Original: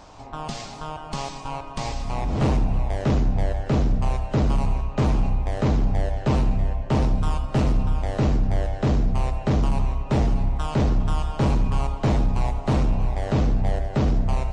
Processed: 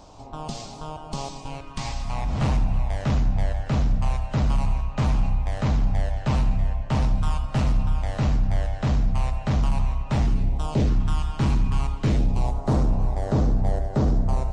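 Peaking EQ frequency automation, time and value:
peaking EQ -11 dB 1.1 oct
1.34 s 1.8 kHz
1.94 s 380 Hz
10.16 s 380 Hz
10.69 s 2.1 kHz
10.95 s 540 Hz
11.92 s 540 Hz
12.60 s 2.6 kHz

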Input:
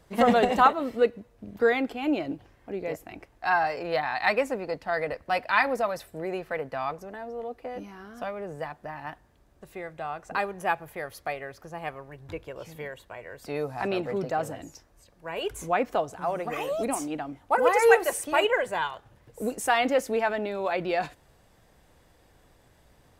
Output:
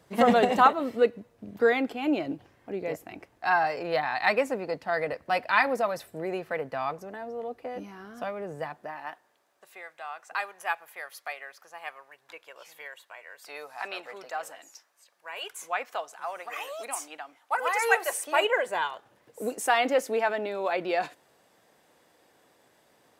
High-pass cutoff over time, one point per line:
8.64 s 110 Hz
9.00 s 380 Hz
9.88 s 1 kHz
17.73 s 1 kHz
18.80 s 270 Hz

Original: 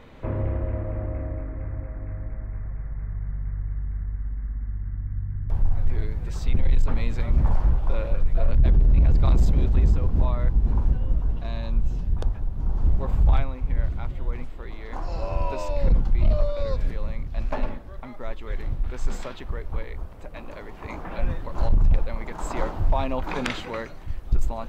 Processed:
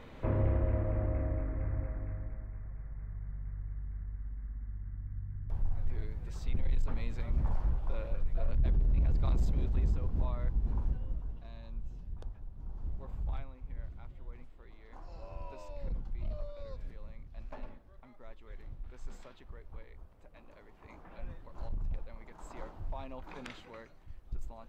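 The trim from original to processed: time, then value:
1.85 s -3 dB
2.55 s -11 dB
10.85 s -11 dB
11.49 s -18 dB

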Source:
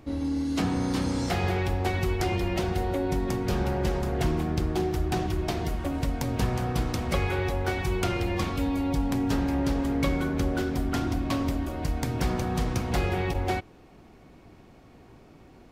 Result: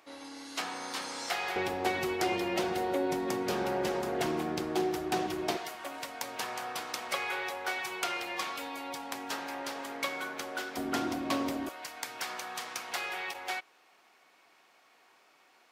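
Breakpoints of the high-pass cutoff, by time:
870 Hz
from 1.56 s 320 Hz
from 5.57 s 820 Hz
from 10.77 s 320 Hz
from 11.69 s 1.1 kHz

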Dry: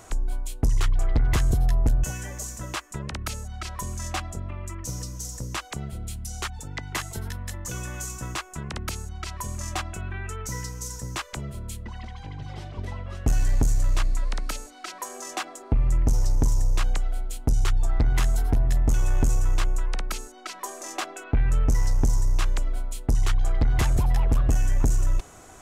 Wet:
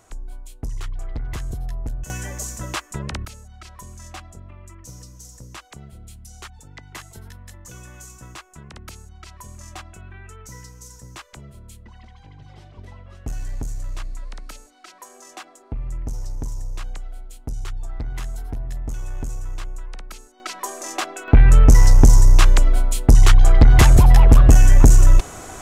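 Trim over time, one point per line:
-7.5 dB
from 2.10 s +4 dB
from 3.25 s -7.5 dB
from 20.40 s +5 dB
from 21.28 s +11.5 dB

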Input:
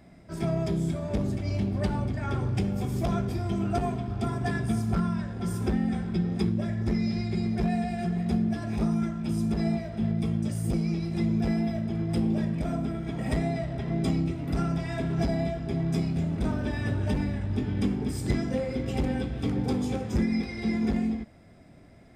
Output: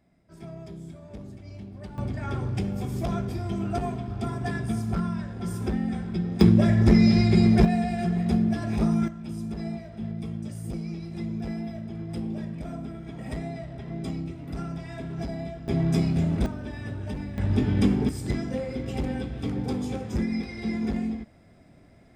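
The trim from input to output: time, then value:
-13 dB
from 1.98 s -1 dB
from 6.41 s +10 dB
from 7.65 s +3 dB
from 9.08 s -6 dB
from 15.68 s +4 dB
from 16.46 s -6 dB
from 17.38 s +5.5 dB
from 18.09 s -1.5 dB

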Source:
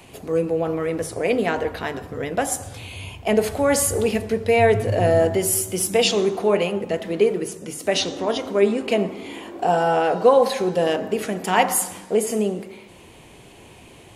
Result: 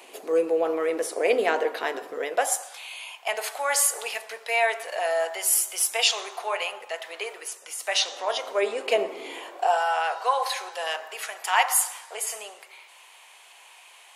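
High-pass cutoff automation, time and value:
high-pass 24 dB/octave
2.14 s 360 Hz
2.77 s 770 Hz
7.90 s 770 Hz
9.27 s 370 Hz
9.86 s 840 Hz

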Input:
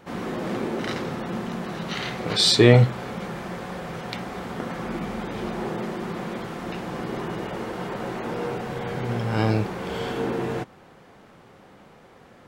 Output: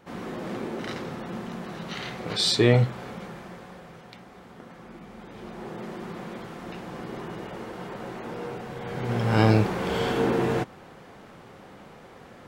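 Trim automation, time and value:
3.08 s -5 dB
4.16 s -14.5 dB
5.04 s -14.5 dB
5.94 s -6 dB
8.78 s -6 dB
9.33 s +3 dB

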